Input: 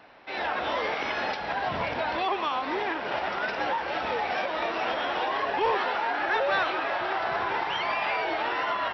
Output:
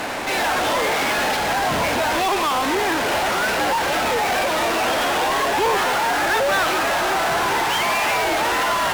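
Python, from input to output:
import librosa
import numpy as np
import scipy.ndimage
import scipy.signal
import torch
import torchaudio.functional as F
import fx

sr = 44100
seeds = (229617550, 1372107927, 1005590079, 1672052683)

p1 = fx.peak_eq(x, sr, hz=260.0, db=3.0, octaves=0.77)
p2 = fx.fuzz(p1, sr, gain_db=58.0, gate_db=-59.0)
y = p1 + (p2 * 10.0 ** (-10.0 / 20.0))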